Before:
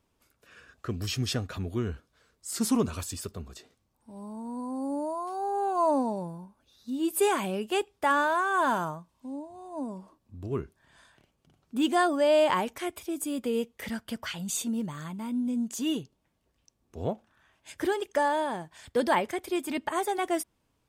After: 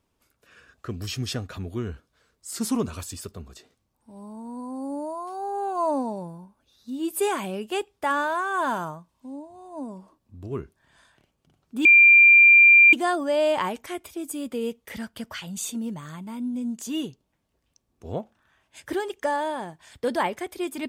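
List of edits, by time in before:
11.85 add tone 2380 Hz -9.5 dBFS 1.08 s

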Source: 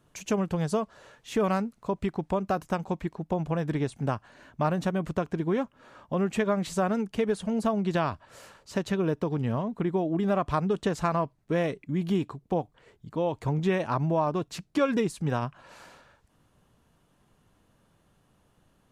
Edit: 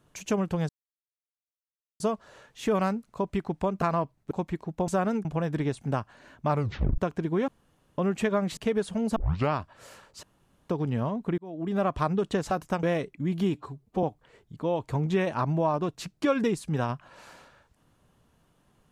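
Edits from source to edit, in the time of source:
0.69 insert silence 1.31 s
2.51–2.83 swap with 11.03–11.52
4.65 tape stop 0.48 s
5.63–6.13 room tone
6.72–7.09 move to 3.4
7.68 tape start 0.36 s
8.75–9.21 room tone
9.9–10.35 fade in
12.24–12.56 stretch 1.5×

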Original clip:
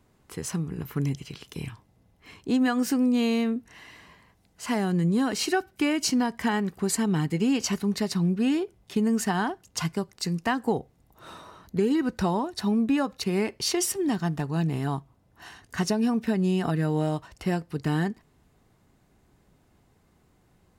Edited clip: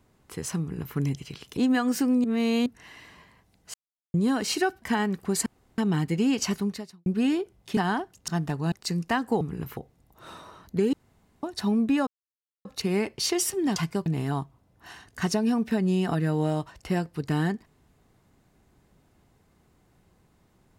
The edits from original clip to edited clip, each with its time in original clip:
0.6–0.96 copy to 10.77
1.57–2.48 cut
3.15–3.57 reverse
4.65–5.05 mute
5.73–6.36 cut
7 insert room tone 0.32 s
7.83–8.28 fade out quadratic
8.99–9.27 cut
9.78–10.08 swap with 14.18–14.62
11.93–12.43 room tone
13.07 insert silence 0.58 s

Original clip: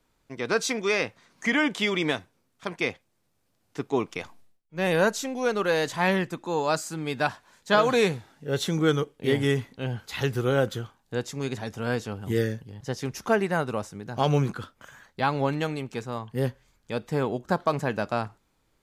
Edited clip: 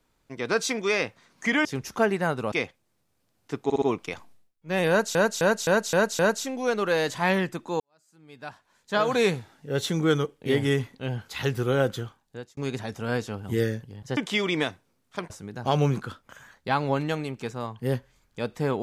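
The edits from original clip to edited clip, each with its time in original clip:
1.65–2.78 swap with 12.95–13.82
3.9 stutter 0.06 s, 4 plays
4.97–5.23 loop, 6 plays
6.58–8.04 fade in quadratic
10.82–11.35 fade out

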